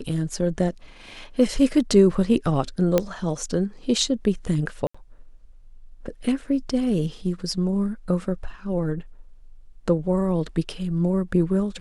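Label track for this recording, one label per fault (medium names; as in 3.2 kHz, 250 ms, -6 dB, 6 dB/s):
2.980000	2.980000	pop -6 dBFS
4.870000	4.950000	dropout 75 ms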